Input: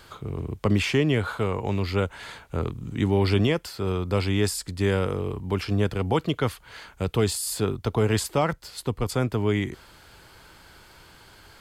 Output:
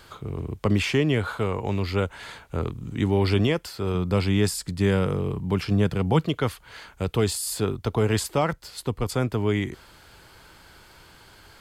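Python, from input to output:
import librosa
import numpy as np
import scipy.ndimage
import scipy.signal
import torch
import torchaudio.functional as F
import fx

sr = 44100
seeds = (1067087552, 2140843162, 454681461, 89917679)

y = fx.peak_eq(x, sr, hz=160.0, db=9.0, octaves=0.63, at=(3.94, 6.26))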